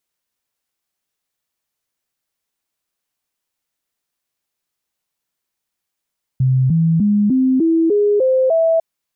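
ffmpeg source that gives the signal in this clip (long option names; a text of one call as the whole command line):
ffmpeg -f lavfi -i "aevalsrc='0.282*clip(min(mod(t,0.3),0.3-mod(t,0.3))/0.005,0,1)*sin(2*PI*130*pow(2,floor(t/0.3)/3)*mod(t,0.3))':duration=2.4:sample_rate=44100" out.wav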